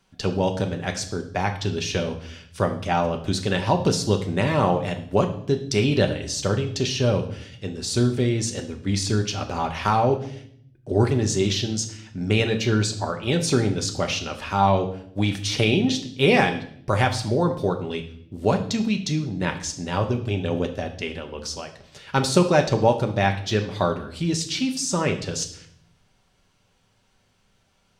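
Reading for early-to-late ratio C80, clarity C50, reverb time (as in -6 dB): 14.5 dB, 11.5 dB, 0.65 s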